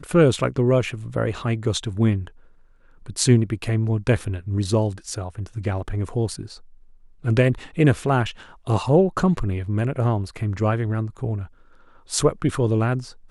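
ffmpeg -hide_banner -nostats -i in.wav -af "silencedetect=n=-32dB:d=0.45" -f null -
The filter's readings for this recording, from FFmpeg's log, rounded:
silence_start: 2.27
silence_end: 3.06 | silence_duration: 0.79
silence_start: 6.54
silence_end: 7.24 | silence_duration: 0.71
silence_start: 11.45
silence_end: 12.11 | silence_duration: 0.65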